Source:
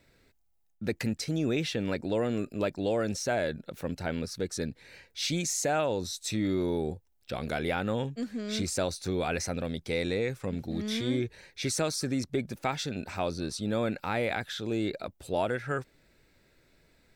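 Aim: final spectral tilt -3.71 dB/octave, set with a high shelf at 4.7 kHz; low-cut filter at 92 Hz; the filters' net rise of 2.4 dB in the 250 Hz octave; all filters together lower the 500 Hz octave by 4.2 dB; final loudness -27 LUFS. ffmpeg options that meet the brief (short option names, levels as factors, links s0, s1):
-af "highpass=92,equalizer=f=250:t=o:g=5,equalizer=f=500:t=o:g=-7,highshelf=f=4700:g=7.5,volume=1.5"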